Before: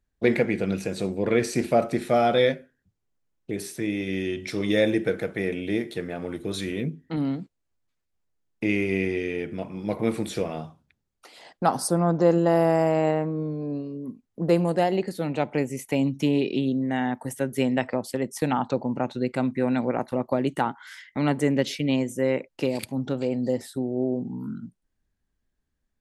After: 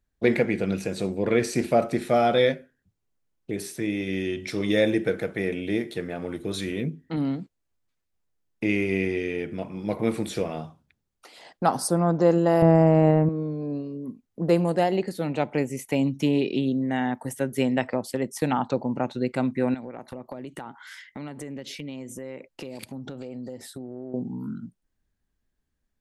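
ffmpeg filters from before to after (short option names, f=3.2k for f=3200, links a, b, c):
-filter_complex "[0:a]asettb=1/sr,asplit=3[a][b][c];[a]atrim=end=12.624[d];[b]atrim=start=12.62:end=13.29,asetpts=PTS-STARTPTS,afade=t=in:d=0.004:c=qsin,afade=t=out:st=0.666:d=0.004:c=qsin,aemphasis=mode=reproduction:type=riaa[e];[c]atrim=start=13.286[f];[d][e]acrossfade=d=0.004:c1=hsin:c2=qsin[g];[g][f]acrossfade=d=0.004:c1=qsin:c2=hsin,asettb=1/sr,asplit=3[h][i][j];[h]atrim=end=19.744[k];[i]atrim=start=19.74:end=24.14,asetpts=PTS-STARTPTS,afade=t=in:d=0.004:c=qsin,afade=t=out:st=4.396:d=0.004:c=qsin,acompressor=threshold=-33dB:ratio=8:attack=3.2:release=140:knee=1:detection=peak[l];[j]atrim=start=24.136[m];[k][l]acrossfade=d=0.004:c1=hsin:c2=qsin[n];[n][m]acrossfade=d=0.004:c1=qsin:c2=hsin"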